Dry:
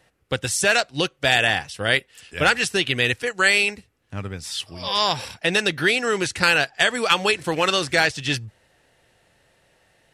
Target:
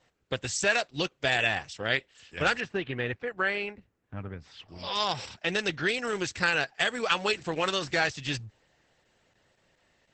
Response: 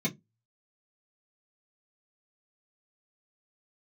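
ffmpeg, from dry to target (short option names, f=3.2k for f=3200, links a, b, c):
-filter_complex "[0:a]asettb=1/sr,asplit=3[a][b][c];[a]atrim=end=2.604[d];[b]atrim=start=2.6:end=4.69,asetpts=PTS-STARTPTS,afade=t=in:d=0.004:c=qsin,afade=t=out:st=2.086:d=0.004:c=qsin,lowpass=1.8k[e];[c]atrim=start=4.686[f];[d][e]acrossfade=d=0.004:c1=hsin:c2=qsin[g];[g][f]acrossfade=d=0.004:c1=qsin:c2=hsin,volume=-6.5dB" -ar 48000 -c:a libopus -b:a 10k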